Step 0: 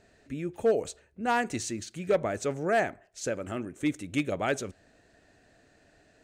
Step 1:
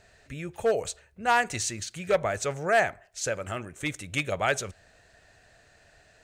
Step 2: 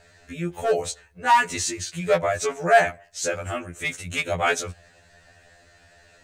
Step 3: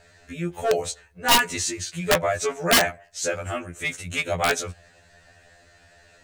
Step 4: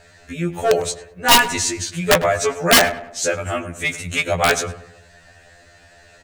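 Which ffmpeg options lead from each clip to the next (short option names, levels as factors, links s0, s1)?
-af "equalizer=f=280:w=1.1:g=-14.5,volume=2"
-af "afftfilt=real='re*2*eq(mod(b,4),0)':imag='im*2*eq(mod(b,4),0)':win_size=2048:overlap=0.75,volume=2.11"
-af "aeval=exprs='(mod(3.55*val(0)+1,2)-1)/3.55':c=same"
-filter_complex "[0:a]asplit=2[s0][s1];[s1]adelay=101,lowpass=f=1900:p=1,volume=0.224,asplit=2[s2][s3];[s3]adelay=101,lowpass=f=1900:p=1,volume=0.47,asplit=2[s4][s5];[s5]adelay=101,lowpass=f=1900:p=1,volume=0.47,asplit=2[s6][s7];[s7]adelay=101,lowpass=f=1900:p=1,volume=0.47,asplit=2[s8][s9];[s9]adelay=101,lowpass=f=1900:p=1,volume=0.47[s10];[s0][s2][s4][s6][s8][s10]amix=inputs=6:normalize=0,volume=1.88"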